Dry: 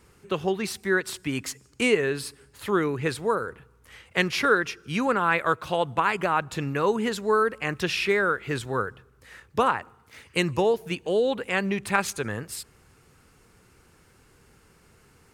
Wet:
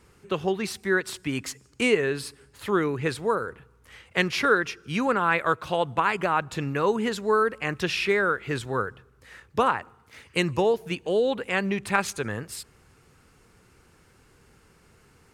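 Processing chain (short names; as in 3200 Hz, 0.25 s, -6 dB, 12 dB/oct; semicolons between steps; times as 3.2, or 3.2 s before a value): high shelf 11000 Hz -5.5 dB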